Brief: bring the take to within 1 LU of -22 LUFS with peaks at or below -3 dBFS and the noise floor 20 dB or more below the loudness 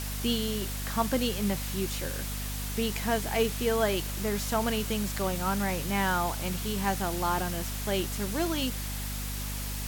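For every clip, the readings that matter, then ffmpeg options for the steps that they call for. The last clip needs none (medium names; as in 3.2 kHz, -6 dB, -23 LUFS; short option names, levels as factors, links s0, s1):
hum 50 Hz; highest harmonic 250 Hz; hum level -33 dBFS; noise floor -34 dBFS; noise floor target -50 dBFS; loudness -30.0 LUFS; peak level -13.5 dBFS; loudness target -22.0 LUFS
-> -af "bandreject=f=50:t=h:w=4,bandreject=f=100:t=h:w=4,bandreject=f=150:t=h:w=4,bandreject=f=200:t=h:w=4,bandreject=f=250:t=h:w=4"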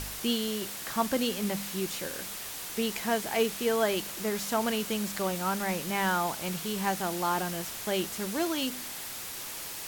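hum not found; noise floor -39 dBFS; noise floor target -51 dBFS
-> -af "afftdn=nr=12:nf=-39"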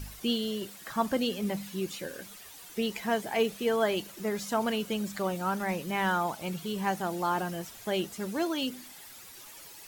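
noise floor -49 dBFS; noise floor target -52 dBFS
-> -af "afftdn=nr=6:nf=-49"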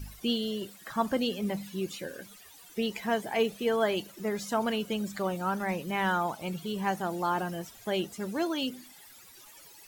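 noise floor -53 dBFS; loudness -31.5 LUFS; peak level -15.0 dBFS; loudness target -22.0 LUFS
-> -af "volume=2.99"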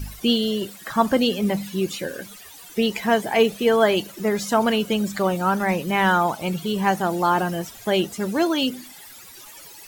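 loudness -22.0 LUFS; peak level -5.5 dBFS; noise floor -44 dBFS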